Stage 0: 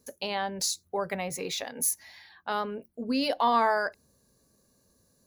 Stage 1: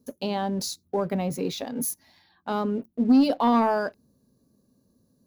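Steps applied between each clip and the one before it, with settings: graphic EQ 125/250/2000/8000 Hz +5/+11/-9/-9 dB; sample leveller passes 1; gain -1.5 dB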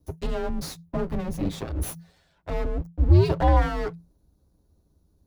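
minimum comb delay 8.5 ms; tilt shelf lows +4.5 dB, about 1100 Hz; frequency shift -170 Hz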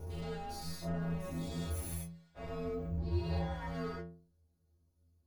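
spectral dilation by 0.24 s; compressor 6:1, threshold -16 dBFS, peak gain reduction 7.5 dB; metallic resonator 82 Hz, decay 0.57 s, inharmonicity 0.008; gain -5 dB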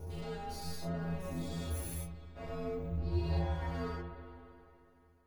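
reverb RT60 3.0 s, pre-delay 63 ms, DRR 7.5 dB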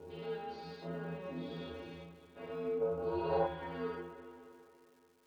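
speaker cabinet 260–3400 Hz, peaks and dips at 450 Hz +3 dB, 680 Hz -8 dB, 1200 Hz -5 dB, 2000 Hz -5 dB; crackle 500/s -63 dBFS; spectral gain 2.82–3.46, 420–1600 Hz +12 dB; gain +2 dB

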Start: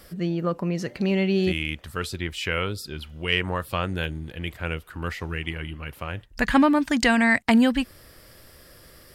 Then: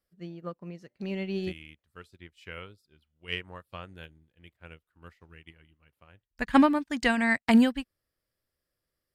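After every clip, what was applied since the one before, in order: upward expander 2.5:1, over -38 dBFS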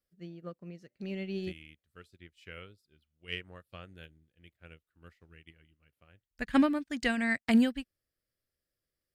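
bell 950 Hz -9 dB 0.6 oct; gain -4 dB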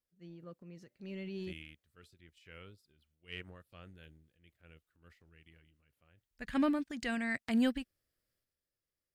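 transient shaper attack -4 dB, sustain +8 dB; gain -5.5 dB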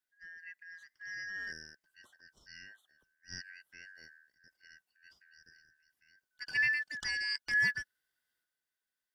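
four-band scrambler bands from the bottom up 3142

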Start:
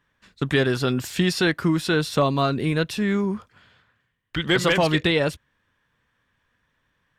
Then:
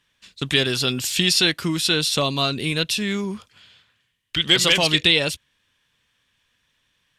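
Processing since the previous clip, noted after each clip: band shelf 5500 Hz +13.5 dB 2.7 oct; gain -3 dB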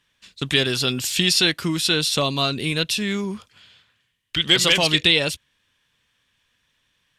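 nothing audible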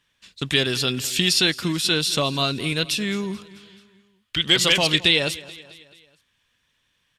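feedback echo 0.217 s, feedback 53%, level -19 dB; gain -1 dB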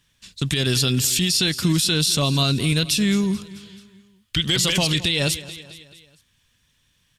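tone controls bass +11 dB, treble +9 dB; limiter -10 dBFS, peak gain reduction 10.5 dB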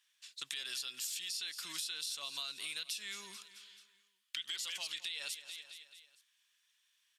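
HPF 1300 Hz 12 dB/oct; compressor 6:1, threshold -29 dBFS, peak gain reduction 11.5 dB; gain -9 dB

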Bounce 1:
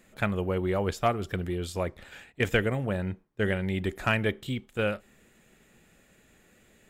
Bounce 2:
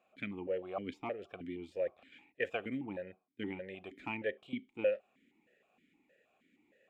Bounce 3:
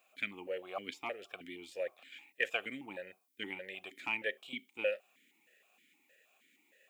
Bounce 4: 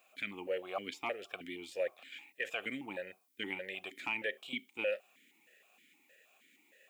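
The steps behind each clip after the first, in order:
vowel sequencer 6.4 Hz; gain +1.5 dB
tilt +4.5 dB/oct; gain +1 dB
limiter -27.5 dBFS, peak gain reduction 11 dB; gain +3 dB

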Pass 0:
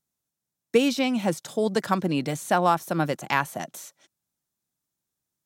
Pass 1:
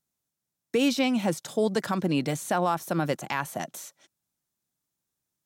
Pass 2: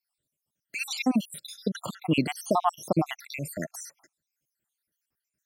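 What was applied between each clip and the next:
limiter -14.5 dBFS, peak gain reduction 7.5 dB
random spectral dropouts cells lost 72%; gain +5 dB

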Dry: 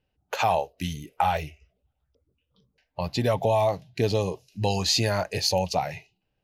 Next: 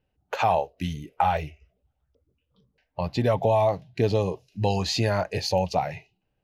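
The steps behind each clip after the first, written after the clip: high shelf 4000 Hz -11.5 dB; gain +1.5 dB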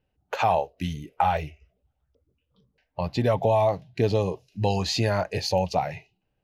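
nothing audible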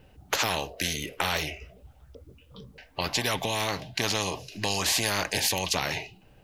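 spectral compressor 4:1

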